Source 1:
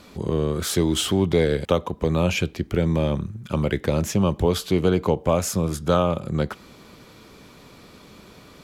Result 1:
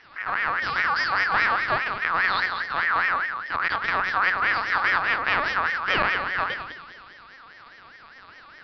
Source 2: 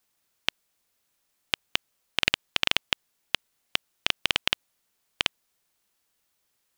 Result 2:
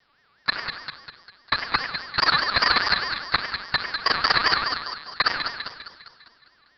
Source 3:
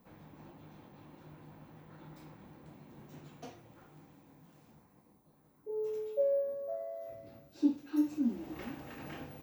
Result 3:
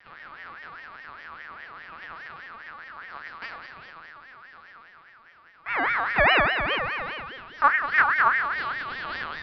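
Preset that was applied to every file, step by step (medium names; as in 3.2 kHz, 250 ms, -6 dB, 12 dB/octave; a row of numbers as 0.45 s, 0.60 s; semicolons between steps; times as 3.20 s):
treble shelf 2.6 kHz +2.5 dB; band-stop 1.2 kHz, Q 10; Schroeder reverb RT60 0.9 s, combs from 33 ms, DRR 12.5 dB; half-wave rectifier; small resonant body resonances 1.3/2.9 kHz, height 8 dB, ringing for 30 ms; saturation -11 dBFS; two-band feedback delay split 1.3 kHz, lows 94 ms, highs 202 ms, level -7 dB; careless resampling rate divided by 3×, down none, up hold; LPC vocoder at 8 kHz pitch kept; ring modulator with a swept carrier 1.5 kHz, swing 25%, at 4.9 Hz; normalise loudness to -23 LUFS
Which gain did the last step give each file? +2.0 dB, +14.5 dB, +14.5 dB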